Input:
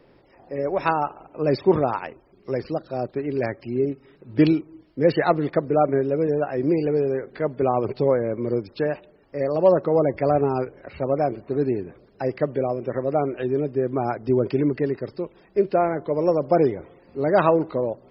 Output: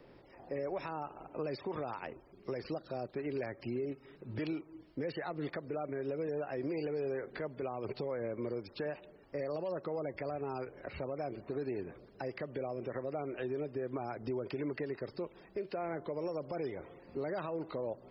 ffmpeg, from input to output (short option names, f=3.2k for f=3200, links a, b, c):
-filter_complex "[0:a]acrossover=split=530|2200[a][b][c];[a]acompressor=threshold=-34dB:ratio=4[d];[b]acompressor=threshold=-33dB:ratio=4[e];[c]acompressor=threshold=-46dB:ratio=4[f];[d][e][f]amix=inputs=3:normalize=0,alimiter=level_in=2dB:limit=-24dB:level=0:latency=1:release=118,volume=-2dB,volume=-3dB"